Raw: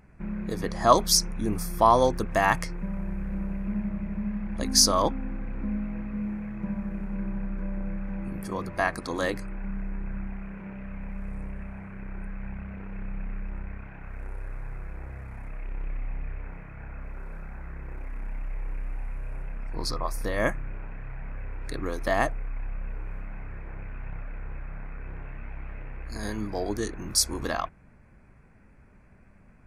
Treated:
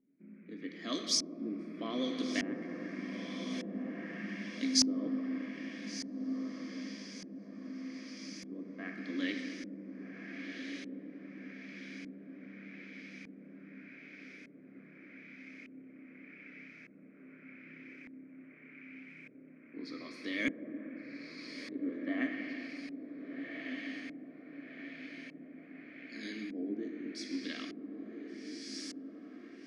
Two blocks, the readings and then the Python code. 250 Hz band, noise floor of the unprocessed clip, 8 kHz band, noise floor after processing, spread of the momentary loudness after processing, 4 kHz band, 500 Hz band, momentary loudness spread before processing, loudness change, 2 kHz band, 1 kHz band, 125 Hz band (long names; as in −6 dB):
−4.5 dB, −54 dBFS, −11.5 dB, −56 dBFS, 17 LU, −8.0 dB, −15.5 dB, 19 LU, −10.5 dB, −7.5 dB, −25.0 dB, −19.0 dB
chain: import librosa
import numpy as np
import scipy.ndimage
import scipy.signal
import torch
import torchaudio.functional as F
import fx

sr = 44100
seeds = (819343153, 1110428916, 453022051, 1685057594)

y = scipy.signal.sosfilt(scipy.signal.cheby1(3, 1.0, 160.0, 'highpass', fs=sr, output='sos'), x)
y = fx.bass_treble(y, sr, bass_db=-12, treble_db=13)
y = fx.rider(y, sr, range_db=3, speed_s=2.0)
y = fx.vowel_filter(y, sr, vowel='i')
y = fx.vibrato(y, sr, rate_hz=11.0, depth_cents=30.0)
y = fx.echo_diffused(y, sr, ms=1514, feedback_pct=52, wet_db=-6)
y = fx.room_shoebox(y, sr, seeds[0], volume_m3=190.0, walls='hard', distance_m=0.32)
y = fx.filter_lfo_lowpass(y, sr, shape='saw_up', hz=0.83, low_hz=470.0, high_hz=7300.0, q=0.85)
y = y * 10.0 ** (5.5 / 20.0)